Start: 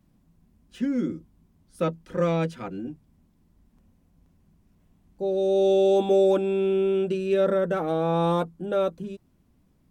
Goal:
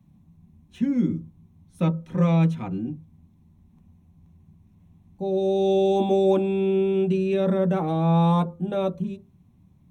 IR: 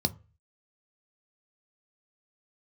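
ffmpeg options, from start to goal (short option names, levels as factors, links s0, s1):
-filter_complex "[0:a]asplit=2[s0][s1];[1:a]atrim=start_sample=2205,highshelf=f=3400:g=-10.5[s2];[s1][s2]afir=irnorm=-1:irlink=0,volume=0.531[s3];[s0][s3]amix=inputs=2:normalize=0,volume=0.708"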